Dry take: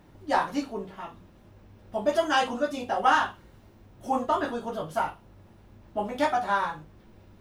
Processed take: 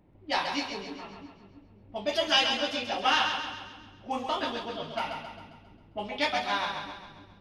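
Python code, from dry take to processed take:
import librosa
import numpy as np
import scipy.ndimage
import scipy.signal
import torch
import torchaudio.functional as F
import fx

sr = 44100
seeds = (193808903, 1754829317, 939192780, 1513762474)

y = fx.env_lowpass(x, sr, base_hz=760.0, full_db=-23.5)
y = fx.band_shelf(y, sr, hz=3400.0, db=14.5, octaves=1.7)
y = fx.wow_flutter(y, sr, seeds[0], rate_hz=2.1, depth_cents=18.0)
y = fx.echo_split(y, sr, split_hz=320.0, low_ms=330, high_ms=134, feedback_pct=52, wet_db=-6.0)
y = y * librosa.db_to_amplitude(-6.0)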